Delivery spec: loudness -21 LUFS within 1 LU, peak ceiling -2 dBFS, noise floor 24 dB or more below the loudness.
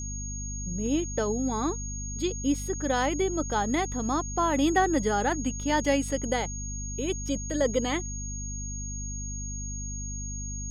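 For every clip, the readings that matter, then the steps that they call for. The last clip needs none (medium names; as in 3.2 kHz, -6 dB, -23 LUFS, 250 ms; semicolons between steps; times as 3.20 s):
hum 50 Hz; highest harmonic 250 Hz; hum level -33 dBFS; steady tone 6.6 kHz; tone level -37 dBFS; loudness -29.0 LUFS; peak level -10.5 dBFS; loudness target -21.0 LUFS
-> hum notches 50/100/150/200/250 Hz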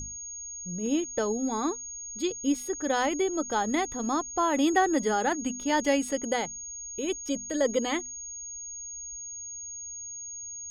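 hum not found; steady tone 6.6 kHz; tone level -37 dBFS
-> band-stop 6.6 kHz, Q 30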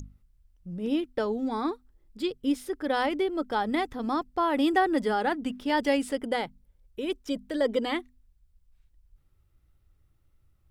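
steady tone not found; loudness -28.5 LUFS; peak level -11.5 dBFS; loudness target -21.0 LUFS
-> trim +7.5 dB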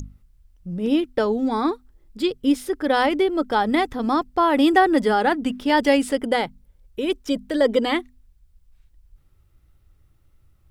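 loudness -21.0 LUFS; peak level -4.0 dBFS; noise floor -59 dBFS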